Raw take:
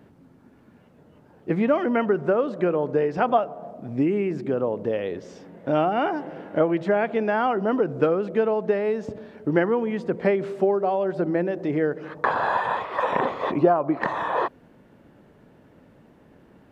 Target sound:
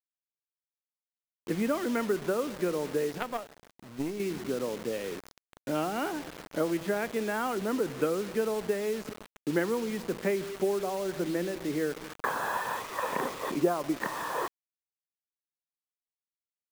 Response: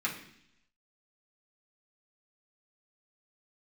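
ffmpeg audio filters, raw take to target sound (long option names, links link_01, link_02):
-filter_complex "[0:a]acrossover=split=140[link_01][link_02];[link_01]acompressor=threshold=-54dB:ratio=16[link_03];[link_02]equalizer=frequency=700:width_type=o:width=0.84:gain=-6.5[link_04];[link_03][link_04]amix=inputs=2:normalize=0,acrusher=bits=5:mix=0:aa=0.000001,asettb=1/sr,asplit=3[link_05][link_06][link_07];[link_05]atrim=end=3.184[link_08];[link_06]atrim=start=3.18:end=4.2,asetpts=PTS-STARTPTS,afade=type=in:duration=0.004:curve=qsin,afade=type=out:start_time=1.016:duration=0.004:curve=qsin,aeval=exprs='0.299*(cos(1*acos(clip(val(0)/0.299,-1,1)))-cos(1*PI/2))+0.0335*(cos(2*acos(clip(val(0)/0.299,-1,1)))-cos(2*PI/2))+0.0596*(cos(3*acos(clip(val(0)/0.299,-1,1)))-cos(3*PI/2))':channel_layout=same[link_09];[link_07]atrim=start=4.196[link_10];[link_08][link_09]acrossfade=duration=0.004:curve1=hsin:curve2=qsin[link_11];[link_11][link_10]acrossfade=duration=0.004:curve1=qsin:curve2=hsin,volume=-5.5dB"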